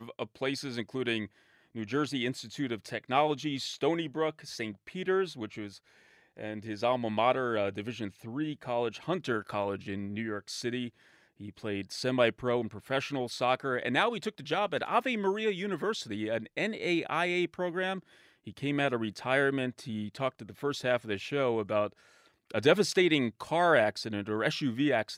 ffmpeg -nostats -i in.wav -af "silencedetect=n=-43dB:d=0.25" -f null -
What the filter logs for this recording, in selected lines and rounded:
silence_start: 1.26
silence_end: 1.75 | silence_duration: 0.49
silence_start: 5.76
silence_end: 6.37 | silence_duration: 0.61
silence_start: 10.89
silence_end: 11.40 | silence_duration: 0.52
silence_start: 18.00
silence_end: 18.47 | silence_duration: 0.47
silence_start: 21.92
silence_end: 22.50 | silence_duration: 0.58